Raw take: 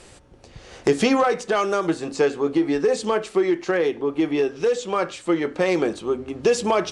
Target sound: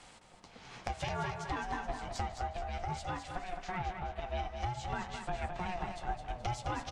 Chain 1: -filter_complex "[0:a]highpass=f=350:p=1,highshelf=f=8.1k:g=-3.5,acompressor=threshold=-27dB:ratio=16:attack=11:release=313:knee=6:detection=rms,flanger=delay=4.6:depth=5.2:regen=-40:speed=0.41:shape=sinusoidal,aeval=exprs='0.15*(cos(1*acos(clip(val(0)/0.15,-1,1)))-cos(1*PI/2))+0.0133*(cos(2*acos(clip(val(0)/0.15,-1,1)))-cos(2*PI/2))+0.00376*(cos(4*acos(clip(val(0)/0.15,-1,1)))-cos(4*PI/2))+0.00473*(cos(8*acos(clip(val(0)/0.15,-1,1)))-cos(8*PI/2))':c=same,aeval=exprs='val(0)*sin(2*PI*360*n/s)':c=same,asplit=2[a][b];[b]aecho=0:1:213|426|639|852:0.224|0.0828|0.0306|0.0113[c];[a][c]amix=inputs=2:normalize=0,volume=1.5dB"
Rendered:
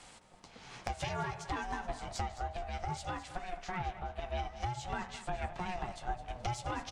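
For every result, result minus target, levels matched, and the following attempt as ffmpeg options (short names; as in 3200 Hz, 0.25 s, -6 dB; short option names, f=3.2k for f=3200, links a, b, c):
echo-to-direct -6.5 dB; 8000 Hz band +2.5 dB
-filter_complex "[0:a]highpass=f=350:p=1,highshelf=f=8.1k:g=-3.5,acompressor=threshold=-27dB:ratio=16:attack=11:release=313:knee=6:detection=rms,flanger=delay=4.6:depth=5.2:regen=-40:speed=0.41:shape=sinusoidal,aeval=exprs='0.15*(cos(1*acos(clip(val(0)/0.15,-1,1)))-cos(1*PI/2))+0.0133*(cos(2*acos(clip(val(0)/0.15,-1,1)))-cos(2*PI/2))+0.00376*(cos(4*acos(clip(val(0)/0.15,-1,1)))-cos(4*PI/2))+0.00473*(cos(8*acos(clip(val(0)/0.15,-1,1)))-cos(8*PI/2))':c=same,aeval=exprs='val(0)*sin(2*PI*360*n/s)':c=same,asplit=2[a][b];[b]aecho=0:1:213|426|639|852:0.473|0.175|0.0648|0.024[c];[a][c]amix=inputs=2:normalize=0,volume=1.5dB"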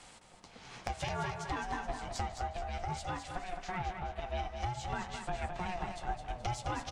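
8000 Hz band +2.5 dB
-filter_complex "[0:a]highpass=f=350:p=1,highshelf=f=8.1k:g=-10.5,acompressor=threshold=-27dB:ratio=16:attack=11:release=313:knee=6:detection=rms,flanger=delay=4.6:depth=5.2:regen=-40:speed=0.41:shape=sinusoidal,aeval=exprs='0.15*(cos(1*acos(clip(val(0)/0.15,-1,1)))-cos(1*PI/2))+0.0133*(cos(2*acos(clip(val(0)/0.15,-1,1)))-cos(2*PI/2))+0.00376*(cos(4*acos(clip(val(0)/0.15,-1,1)))-cos(4*PI/2))+0.00473*(cos(8*acos(clip(val(0)/0.15,-1,1)))-cos(8*PI/2))':c=same,aeval=exprs='val(0)*sin(2*PI*360*n/s)':c=same,asplit=2[a][b];[b]aecho=0:1:213|426|639|852:0.473|0.175|0.0648|0.024[c];[a][c]amix=inputs=2:normalize=0,volume=1.5dB"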